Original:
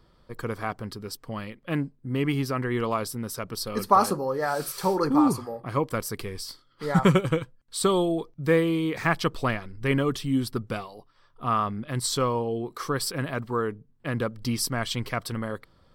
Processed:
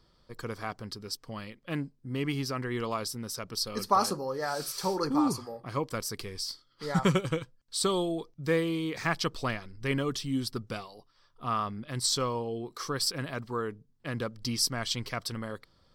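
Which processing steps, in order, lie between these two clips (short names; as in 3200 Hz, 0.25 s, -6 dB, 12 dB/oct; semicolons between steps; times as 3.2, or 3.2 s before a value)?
bell 5300 Hz +9.5 dB 1.2 oct; gain -6 dB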